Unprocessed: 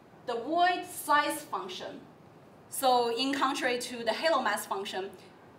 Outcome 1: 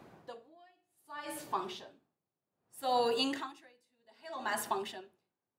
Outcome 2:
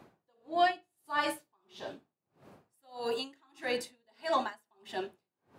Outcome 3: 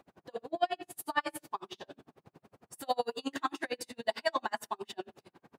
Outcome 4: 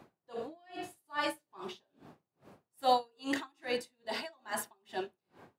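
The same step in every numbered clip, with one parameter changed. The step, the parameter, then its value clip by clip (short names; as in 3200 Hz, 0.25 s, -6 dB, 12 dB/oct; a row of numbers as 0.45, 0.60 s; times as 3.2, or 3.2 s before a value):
dB-linear tremolo, rate: 0.64, 1.6, 11, 2.4 Hz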